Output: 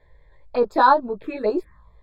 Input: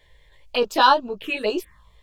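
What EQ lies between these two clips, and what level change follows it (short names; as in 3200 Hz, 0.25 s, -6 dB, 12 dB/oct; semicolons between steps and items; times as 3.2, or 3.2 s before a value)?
running mean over 15 samples; +2.5 dB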